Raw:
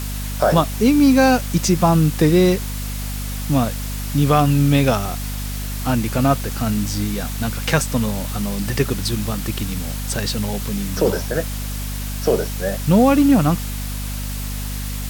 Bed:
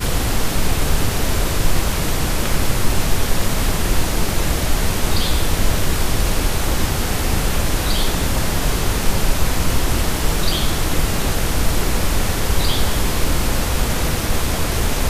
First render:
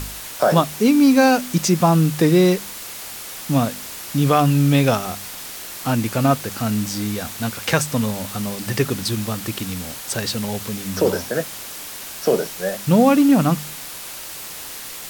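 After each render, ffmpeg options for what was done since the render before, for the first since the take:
ffmpeg -i in.wav -af "bandreject=frequency=50:width_type=h:width=4,bandreject=frequency=100:width_type=h:width=4,bandreject=frequency=150:width_type=h:width=4,bandreject=frequency=200:width_type=h:width=4,bandreject=frequency=250:width_type=h:width=4" out.wav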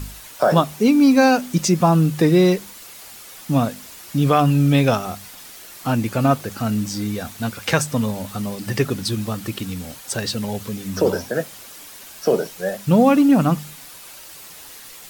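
ffmpeg -i in.wav -af "afftdn=noise_reduction=8:noise_floor=-34" out.wav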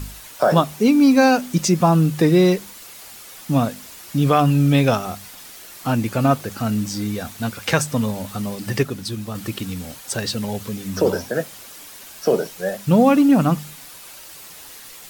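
ffmpeg -i in.wav -filter_complex "[0:a]asplit=3[link_01][link_02][link_03];[link_01]atrim=end=8.832[link_04];[link_02]atrim=start=8.828:end=9.352,asetpts=PTS-STARTPTS,volume=-4.5dB[link_05];[link_03]atrim=start=9.348[link_06];[link_04][link_05]acrossfade=duration=0.004:curve1=hsin:curve2=hsin[link_07];[link_07][link_06]acrossfade=duration=0.004:curve1=hsin:curve2=hsin" out.wav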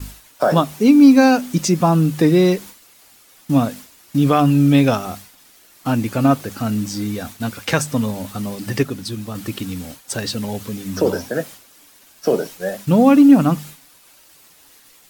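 ffmpeg -i in.wav -af "agate=range=-33dB:threshold=-32dB:ratio=3:detection=peak,equalizer=frequency=280:width=4.8:gain=5.5" out.wav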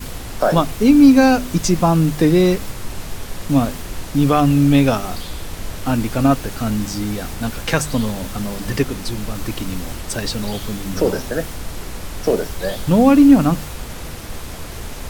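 ffmpeg -i in.wav -i bed.wav -filter_complex "[1:a]volume=-11.5dB[link_01];[0:a][link_01]amix=inputs=2:normalize=0" out.wav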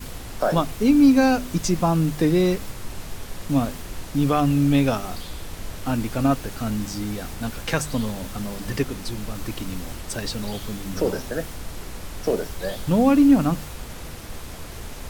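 ffmpeg -i in.wav -af "volume=-5.5dB" out.wav

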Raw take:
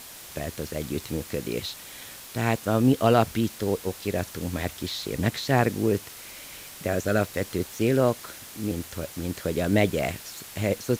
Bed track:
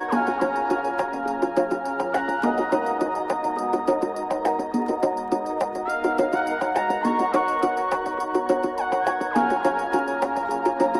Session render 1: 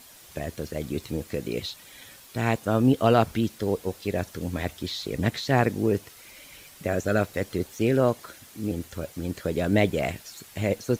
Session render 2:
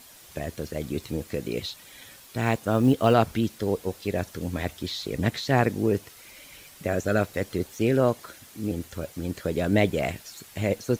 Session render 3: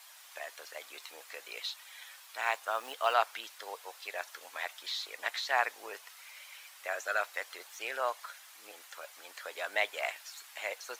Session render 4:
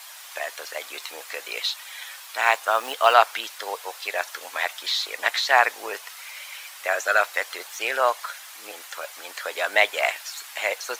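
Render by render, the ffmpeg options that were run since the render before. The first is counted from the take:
ffmpeg -i in.wav -af "afftdn=noise_reduction=8:noise_floor=-43" out.wav
ffmpeg -i in.wav -filter_complex "[0:a]asettb=1/sr,asplit=3[link_01][link_02][link_03];[link_01]atrim=end=2.414[link_04];[link_02]atrim=start=2.41:end=3.14,asetpts=PTS-STARTPTS,afade=type=in:duration=0.004:curve=qsin,afade=type=out:start_time=0.726:duration=0.004:curve=qsin,acrusher=bits=8:mode=log:mix=0:aa=0.000001[link_05];[link_03]atrim=start=3.136[link_06];[link_04][link_05]acrossfade=duration=0.004:curve1=hsin:curve2=qsin[link_07];[link_07][link_06]acrossfade=duration=0.004:curve1=qsin:curve2=hsin" out.wav
ffmpeg -i in.wav -af "highpass=frequency=830:width=0.5412,highpass=frequency=830:width=1.3066,highshelf=frequency=4100:gain=-6.5" out.wav
ffmpeg -i in.wav -af "volume=12dB,alimiter=limit=-1dB:level=0:latency=1" out.wav

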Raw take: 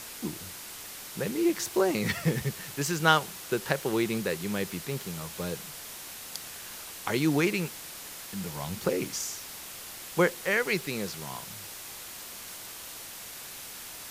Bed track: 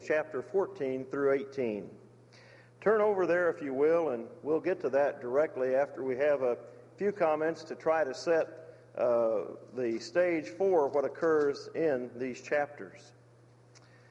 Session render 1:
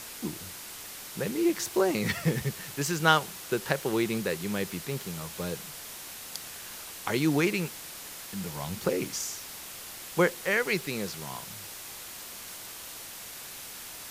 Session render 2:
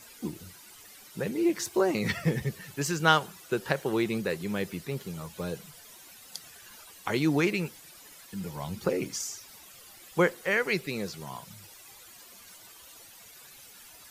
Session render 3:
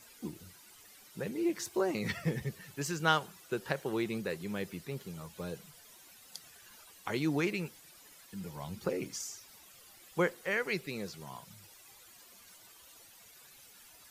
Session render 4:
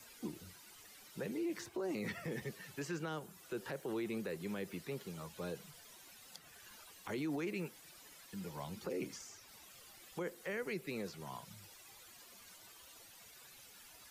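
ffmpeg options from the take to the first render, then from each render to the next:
ffmpeg -i in.wav -af anull out.wav
ffmpeg -i in.wav -af "afftdn=noise_reduction=13:noise_floor=-43" out.wav
ffmpeg -i in.wav -af "volume=-6dB" out.wav
ffmpeg -i in.wav -filter_complex "[0:a]acrossover=split=200|450|3100|6300[link_01][link_02][link_03][link_04][link_05];[link_01]acompressor=threshold=-53dB:ratio=4[link_06];[link_02]acompressor=threshold=-34dB:ratio=4[link_07];[link_03]acompressor=threshold=-42dB:ratio=4[link_08];[link_04]acompressor=threshold=-59dB:ratio=4[link_09];[link_05]acompressor=threshold=-59dB:ratio=4[link_10];[link_06][link_07][link_08][link_09][link_10]amix=inputs=5:normalize=0,alimiter=level_in=8dB:limit=-24dB:level=0:latency=1:release=19,volume=-8dB" out.wav

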